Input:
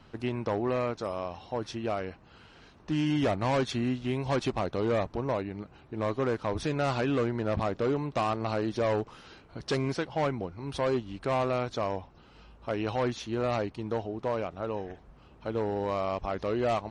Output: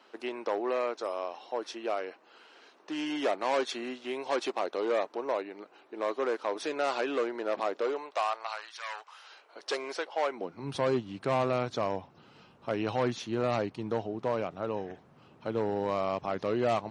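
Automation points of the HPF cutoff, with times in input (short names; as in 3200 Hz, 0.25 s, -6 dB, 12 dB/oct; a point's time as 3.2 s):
HPF 24 dB/oct
7.76 s 340 Hz
8.81 s 1200 Hz
9.58 s 430 Hz
10.28 s 430 Hz
10.68 s 110 Hz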